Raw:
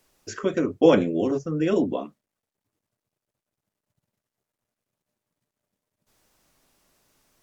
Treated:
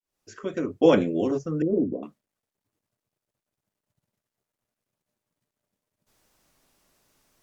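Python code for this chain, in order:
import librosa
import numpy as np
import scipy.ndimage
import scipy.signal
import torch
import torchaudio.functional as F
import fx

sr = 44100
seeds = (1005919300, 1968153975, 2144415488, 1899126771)

y = fx.fade_in_head(x, sr, length_s=0.91)
y = fx.cheby2_lowpass(y, sr, hz=2200.0, order=4, stop_db=70, at=(1.62, 2.03))
y = y * 10.0 ** (-1.0 / 20.0)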